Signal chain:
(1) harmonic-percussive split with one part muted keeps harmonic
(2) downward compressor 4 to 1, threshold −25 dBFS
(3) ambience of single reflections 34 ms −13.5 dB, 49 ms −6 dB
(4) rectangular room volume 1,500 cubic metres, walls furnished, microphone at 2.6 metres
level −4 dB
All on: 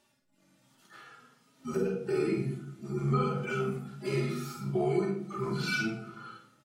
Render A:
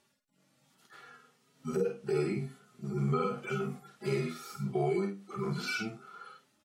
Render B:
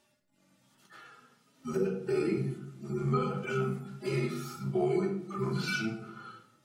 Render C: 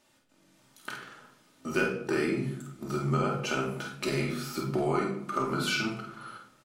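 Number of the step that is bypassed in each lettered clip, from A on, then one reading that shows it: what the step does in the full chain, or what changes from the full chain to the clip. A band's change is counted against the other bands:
4, echo-to-direct ratio 1.0 dB to −5.5 dB
3, echo-to-direct ratio 1.0 dB to −1.0 dB
1, 125 Hz band −5.0 dB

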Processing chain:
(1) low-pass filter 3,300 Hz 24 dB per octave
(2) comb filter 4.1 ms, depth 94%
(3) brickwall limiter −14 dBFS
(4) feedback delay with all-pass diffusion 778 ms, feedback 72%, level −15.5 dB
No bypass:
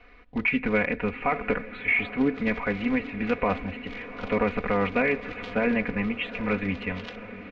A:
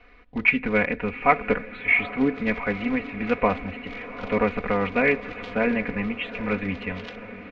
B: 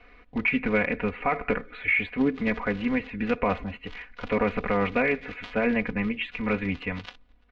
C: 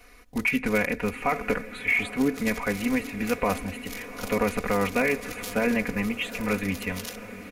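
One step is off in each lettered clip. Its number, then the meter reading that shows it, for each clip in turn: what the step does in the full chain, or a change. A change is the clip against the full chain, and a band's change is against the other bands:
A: 3, change in crest factor +8.0 dB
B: 4, echo-to-direct ratio −12.5 dB to none audible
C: 1, 4 kHz band +3.5 dB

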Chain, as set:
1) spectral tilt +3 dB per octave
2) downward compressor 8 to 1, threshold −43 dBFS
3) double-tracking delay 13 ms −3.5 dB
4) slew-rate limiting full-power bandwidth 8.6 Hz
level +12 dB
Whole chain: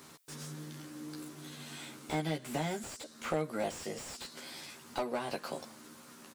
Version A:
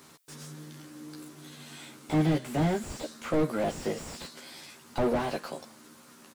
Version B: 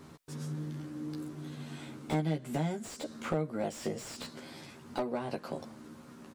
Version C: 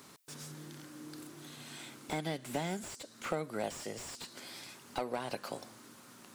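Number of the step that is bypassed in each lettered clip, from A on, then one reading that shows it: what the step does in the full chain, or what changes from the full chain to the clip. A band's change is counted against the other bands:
2, average gain reduction 6.0 dB
1, 125 Hz band +8.0 dB
3, 125 Hz band −2.0 dB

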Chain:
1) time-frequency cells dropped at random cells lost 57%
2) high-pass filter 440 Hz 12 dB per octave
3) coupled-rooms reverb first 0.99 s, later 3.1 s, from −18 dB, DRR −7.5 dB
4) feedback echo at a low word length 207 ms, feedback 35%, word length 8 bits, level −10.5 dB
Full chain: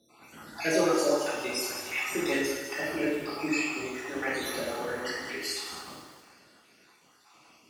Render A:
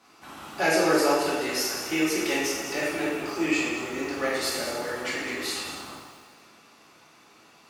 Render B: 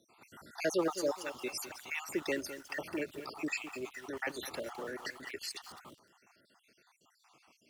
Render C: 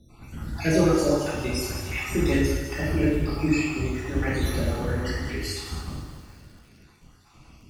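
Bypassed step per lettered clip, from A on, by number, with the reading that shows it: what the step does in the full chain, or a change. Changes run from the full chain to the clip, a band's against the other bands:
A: 1, 1 kHz band +2.0 dB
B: 3, change in momentary loudness spread +4 LU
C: 2, 125 Hz band +21.0 dB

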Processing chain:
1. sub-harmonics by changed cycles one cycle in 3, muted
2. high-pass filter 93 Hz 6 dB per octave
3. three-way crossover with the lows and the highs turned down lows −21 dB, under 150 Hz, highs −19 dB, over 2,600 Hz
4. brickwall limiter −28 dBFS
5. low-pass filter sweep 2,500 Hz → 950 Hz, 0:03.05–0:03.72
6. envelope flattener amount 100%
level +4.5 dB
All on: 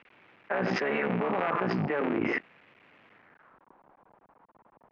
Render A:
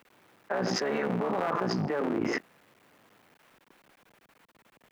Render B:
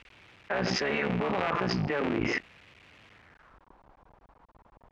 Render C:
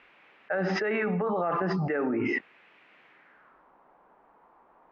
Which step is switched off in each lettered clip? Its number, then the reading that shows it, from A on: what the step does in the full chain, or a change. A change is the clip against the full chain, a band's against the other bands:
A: 5, 4 kHz band +6.0 dB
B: 3, 4 kHz band +9.0 dB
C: 1, 4 kHz band −2.0 dB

